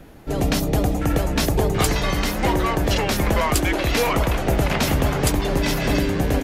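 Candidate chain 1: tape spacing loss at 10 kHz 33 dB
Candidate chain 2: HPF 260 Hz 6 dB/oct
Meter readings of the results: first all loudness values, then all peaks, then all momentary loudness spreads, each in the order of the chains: -23.0, -23.5 LUFS; -9.5, -6.5 dBFS; 2, 3 LU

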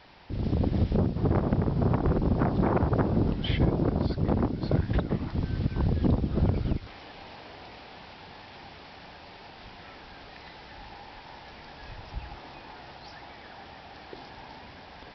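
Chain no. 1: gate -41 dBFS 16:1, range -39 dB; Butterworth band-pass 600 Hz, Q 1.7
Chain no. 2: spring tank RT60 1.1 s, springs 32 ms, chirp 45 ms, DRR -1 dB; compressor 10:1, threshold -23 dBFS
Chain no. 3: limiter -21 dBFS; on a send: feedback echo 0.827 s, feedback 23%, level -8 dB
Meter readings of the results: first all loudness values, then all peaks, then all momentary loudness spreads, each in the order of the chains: -38.0, -30.0, -31.0 LUFS; -17.5, -15.5, -18.0 dBFS; 15, 15, 16 LU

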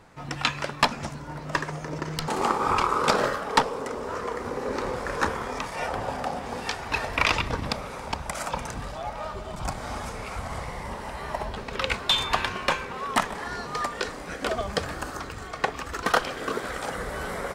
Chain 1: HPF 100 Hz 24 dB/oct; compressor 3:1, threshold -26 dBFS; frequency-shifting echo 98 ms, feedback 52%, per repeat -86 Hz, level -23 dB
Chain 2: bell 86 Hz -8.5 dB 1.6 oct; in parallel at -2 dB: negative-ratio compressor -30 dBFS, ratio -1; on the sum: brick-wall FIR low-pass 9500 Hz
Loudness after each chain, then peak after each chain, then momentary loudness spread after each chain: -32.0, -25.5 LUFS; -8.0, -5.0 dBFS; 7, 8 LU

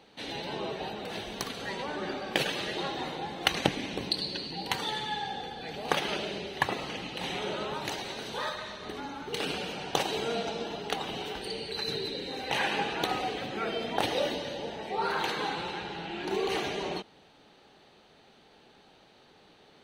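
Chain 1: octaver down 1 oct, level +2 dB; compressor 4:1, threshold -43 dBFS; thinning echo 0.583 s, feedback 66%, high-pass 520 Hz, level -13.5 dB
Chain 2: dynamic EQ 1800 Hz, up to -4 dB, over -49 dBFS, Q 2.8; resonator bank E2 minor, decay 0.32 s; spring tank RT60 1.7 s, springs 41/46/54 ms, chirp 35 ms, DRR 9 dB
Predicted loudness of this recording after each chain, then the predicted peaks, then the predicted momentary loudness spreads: -43.5, -45.0 LUFS; -20.0, -18.0 dBFS; 13, 7 LU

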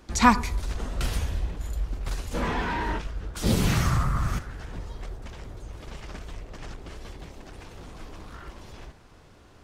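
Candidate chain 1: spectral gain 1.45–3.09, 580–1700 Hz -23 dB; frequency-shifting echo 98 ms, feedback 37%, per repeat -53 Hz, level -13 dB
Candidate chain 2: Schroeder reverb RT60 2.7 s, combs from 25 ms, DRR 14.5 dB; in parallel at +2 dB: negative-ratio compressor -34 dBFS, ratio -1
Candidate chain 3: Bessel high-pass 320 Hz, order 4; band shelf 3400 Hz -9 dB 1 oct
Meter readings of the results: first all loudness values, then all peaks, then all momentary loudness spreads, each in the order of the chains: -28.0, -27.0, -30.5 LUFS; -4.5, -4.5, -4.0 dBFS; 21, 12, 19 LU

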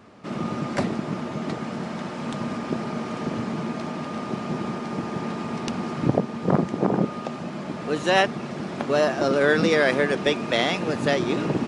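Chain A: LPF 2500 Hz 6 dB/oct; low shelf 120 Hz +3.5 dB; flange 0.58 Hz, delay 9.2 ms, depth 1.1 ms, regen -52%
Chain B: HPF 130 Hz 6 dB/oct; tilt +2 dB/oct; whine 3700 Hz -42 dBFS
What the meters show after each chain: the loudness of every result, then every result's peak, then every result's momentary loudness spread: -29.5, -26.5 LUFS; -9.5, -4.5 dBFS; 10, 13 LU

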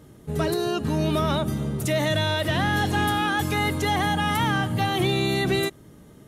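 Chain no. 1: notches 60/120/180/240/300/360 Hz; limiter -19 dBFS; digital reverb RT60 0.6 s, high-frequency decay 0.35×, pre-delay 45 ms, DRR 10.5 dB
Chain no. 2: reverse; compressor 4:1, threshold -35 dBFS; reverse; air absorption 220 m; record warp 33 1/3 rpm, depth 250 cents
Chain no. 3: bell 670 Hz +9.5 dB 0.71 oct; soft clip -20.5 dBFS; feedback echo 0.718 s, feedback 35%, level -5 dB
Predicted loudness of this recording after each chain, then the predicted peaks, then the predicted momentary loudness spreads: -27.0, -37.0, -24.0 LUFS; -16.0, -25.5, -15.5 dBFS; 2, 2, 4 LU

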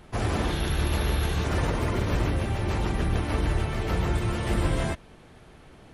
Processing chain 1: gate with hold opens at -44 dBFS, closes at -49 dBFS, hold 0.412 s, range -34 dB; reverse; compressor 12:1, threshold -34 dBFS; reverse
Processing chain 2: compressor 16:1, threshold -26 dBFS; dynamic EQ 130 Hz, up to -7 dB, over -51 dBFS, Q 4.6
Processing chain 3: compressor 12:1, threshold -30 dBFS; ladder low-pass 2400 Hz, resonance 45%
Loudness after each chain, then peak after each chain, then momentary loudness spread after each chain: -39.5, -32.5, -44.0 LUFS; -24.5, -19.5, -31.0 dBFS; 9, 14, 13 LU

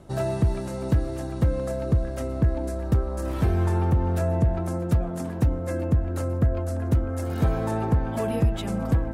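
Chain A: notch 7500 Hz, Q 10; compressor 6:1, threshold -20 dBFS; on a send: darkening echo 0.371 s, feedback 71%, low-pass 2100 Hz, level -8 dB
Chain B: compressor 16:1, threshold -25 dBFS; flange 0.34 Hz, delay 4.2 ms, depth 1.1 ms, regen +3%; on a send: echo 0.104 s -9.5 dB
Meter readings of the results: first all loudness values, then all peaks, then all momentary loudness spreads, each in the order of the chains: -27.0, -35.0 LUFS; -13.0, -18.0 dBFS; 3, 3 LU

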